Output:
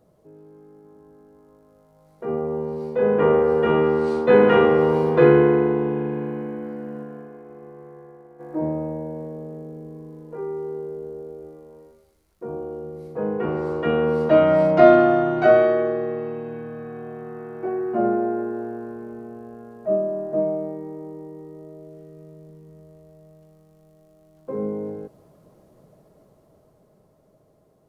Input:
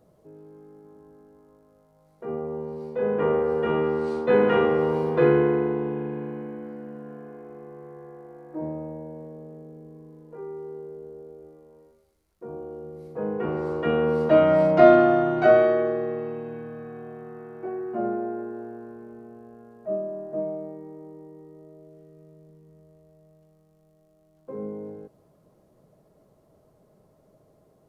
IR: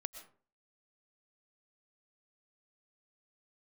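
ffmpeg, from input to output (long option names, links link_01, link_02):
-filter_complex "[0:a]asplit=3[link_01][link_02][link_03];[link_01]afade=type=out:start_time=7.03:duration=0.02[link_04];[link_02]agate=range=-33dB:threshold=-36dB:ratio=3:detection=peak,afade=type=in:start_time=7.03:duration=0.02,afade=type=out:start_time=8.39:duration=0.02[link_05];[link_03]afade=type=in:start_time=8.39:duration=0.02[link_06];[link_04][link_05][link_06]amix=inputs=3:normalize=0,dynaudnorm=framelen=210:gausssize=17:maxgain=7dB"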